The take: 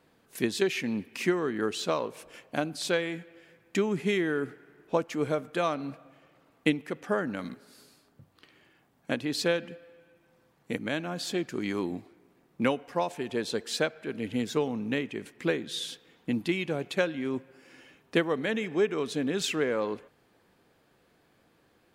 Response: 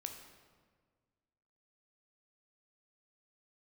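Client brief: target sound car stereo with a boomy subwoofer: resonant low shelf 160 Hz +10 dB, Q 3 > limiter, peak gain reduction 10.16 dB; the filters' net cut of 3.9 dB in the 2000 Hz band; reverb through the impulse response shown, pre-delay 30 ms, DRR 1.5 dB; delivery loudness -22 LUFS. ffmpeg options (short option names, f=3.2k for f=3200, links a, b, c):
-filter_complex "[0:a]equalizer=f=2k:t=o:g=-5,asplit=2[a][b];[1:a]atrim=start_sample=2205,adelay=30[c];[b][c]afir=irnorm=-1:irlink=0,volume=1dB[d];[a][d]amix=inputs=2:normalize=0,lowshelf=f=160:t=q:w=3:g=10,volume=10.5dB,alimiter=limit=-12dB:level=0:latency=1"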